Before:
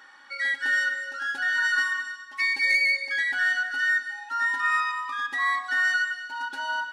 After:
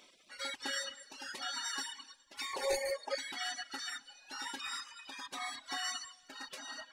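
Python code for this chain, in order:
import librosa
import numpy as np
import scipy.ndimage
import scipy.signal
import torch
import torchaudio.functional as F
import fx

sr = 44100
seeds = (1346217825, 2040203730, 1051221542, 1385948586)

y = fx.spec_gate(x, sr, threshold_db=-20, keep='weak')
y = fx.band_shelf(y, sr, hz=640.0, db=14.0, octaves=1.7, at=(2.53, 3.15))
y = fx.dereverb_blind(y, sr, rt60_s=0.98)
y = y * 10.0 ** (3.0 / 20.0)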